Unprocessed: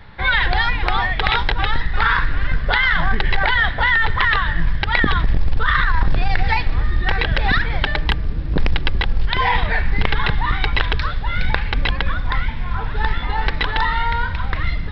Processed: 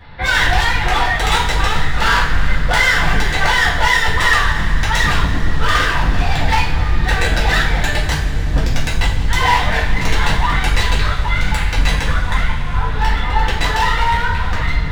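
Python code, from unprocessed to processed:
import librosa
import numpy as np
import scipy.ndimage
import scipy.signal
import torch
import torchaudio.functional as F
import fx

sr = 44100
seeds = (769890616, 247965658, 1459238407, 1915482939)

y = 10.0 ** (-12.0 / 20.0) * (np.abs((x / 10.0 ** (-12.0 / 20.0) + 3.0) % 4.0 - 2.0) - 1.0)
y = fx.rev_double_slope(y, sr, seeds[0], early_s=0.43, late_s=4.7, knee_db=-18, drr_db=-6.5)
y = y * 10.0 ** (-2.5 / 20.0)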